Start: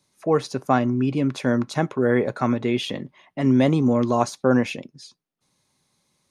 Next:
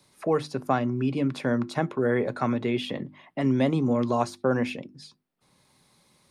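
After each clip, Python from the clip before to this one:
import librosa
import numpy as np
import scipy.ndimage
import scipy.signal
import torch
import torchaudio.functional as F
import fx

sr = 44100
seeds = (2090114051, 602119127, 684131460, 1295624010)

y = fx.peak_eq(x, sr, hz=6300.0, db=-7.5, octaves=0.24)
y = fx.hum_notches(y, sr, base_hz=50, count=7)
y = fx.band_squash(y, sr, depth_pct=40)
y = F.gain(torch.from_numpy(y), -4.0).numpy()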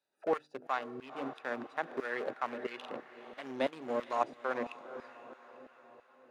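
y = fx.wiener(x, sr, points=41)
y = fx.echo_diffused(y, sr, ms=487, feedback_pct=52, wet_db=-13)
y = fx.filter_lfo_highpass(y, sr, shape='saw_down', hz=3.0, low_hz=440.0, high_hz=1500.0, q=0.8)
y = F.gain(torch.from_numpy(y), -2.0).numpy()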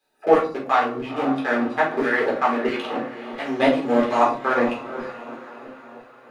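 y = fx.room_shoebox(x, sr, seeds[0], volume_m3=270.0, walls='furnished', distance_m=3.9)
y = F.gain(torch.from_numpy(y), 8.5).numpy()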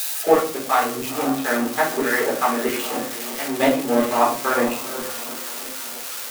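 y = x + 0.5 * 10.0 ** (-18.0 / 20.0) * np.diff(np.sign(x), prepend=np.sign(x[:1]))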